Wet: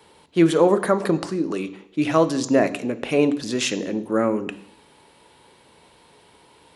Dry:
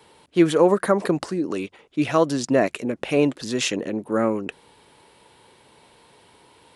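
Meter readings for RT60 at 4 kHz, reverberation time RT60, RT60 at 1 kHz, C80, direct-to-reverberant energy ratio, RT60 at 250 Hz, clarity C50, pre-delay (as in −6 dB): 0.65 s, 0.70 s, 0.70 s, 18.0 dB, 11.5 dB, 0.65 s, 15.5 dB, 3 ms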